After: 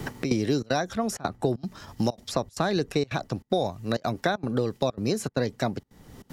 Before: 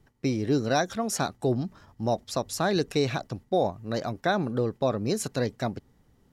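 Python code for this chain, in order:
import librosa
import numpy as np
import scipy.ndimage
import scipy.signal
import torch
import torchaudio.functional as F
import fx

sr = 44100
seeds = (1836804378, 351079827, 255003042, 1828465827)

y = fx.step_gate(x, sr, bpm=193, pattern='xxx.xxxx.xxx', floor_db=-24.0, edge_ms=4.5)
y = fx.band_squash(y, sr, depth_pct=100)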